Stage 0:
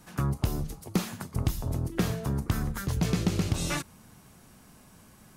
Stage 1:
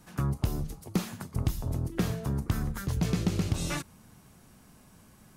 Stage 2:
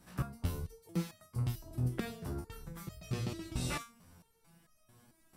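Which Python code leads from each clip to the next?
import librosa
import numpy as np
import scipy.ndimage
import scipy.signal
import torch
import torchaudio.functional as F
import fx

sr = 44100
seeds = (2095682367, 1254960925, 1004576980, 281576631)

y1 = fx.low_shelf(x, sr, hz=320.0, db=2.5)
y1 = F.gain(torch.from_numpy(y1), -3.0).numpy()
y2 = fx.notch(y1, sr, hz=6600.0, q=10.0)
y2 = fx.resonator_held(y2, sr, hz=4.5, low_hz=62.0, high_hz=630.0)
y2 = F.gain(torch.from_numpy(y2), 4.0).numpy()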